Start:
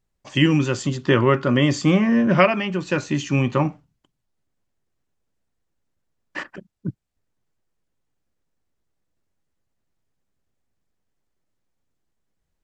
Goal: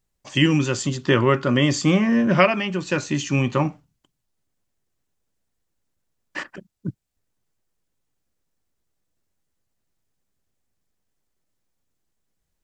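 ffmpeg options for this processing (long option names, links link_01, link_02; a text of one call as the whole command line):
ffmpeg -i in.wav -af "highshelf=frequency=4400:gain=7.5,volume=-1dB" out.wav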